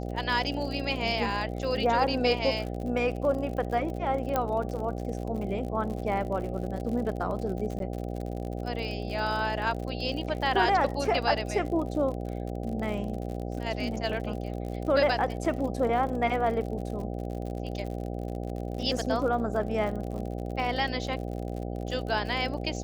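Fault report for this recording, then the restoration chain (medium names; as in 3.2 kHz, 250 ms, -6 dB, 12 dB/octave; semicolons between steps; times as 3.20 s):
buzz 60 Hz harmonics 13 -34 dBFS
crackle 58 per s -35 dBFS
4.36 s: pop -13 dBFS
7.79–7.80 s: dropout 12 ms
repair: de-click; de-hum 60 Hz, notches 13; interpolate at 7.79 s, 12 ms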